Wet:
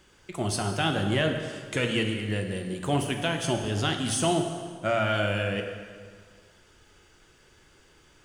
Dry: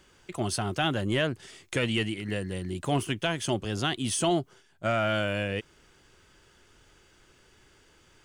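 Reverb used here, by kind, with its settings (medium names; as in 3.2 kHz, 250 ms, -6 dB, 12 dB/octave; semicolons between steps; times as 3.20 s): plate-style reverb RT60 1.8 s, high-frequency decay 0.8×, DRR 3.5 dB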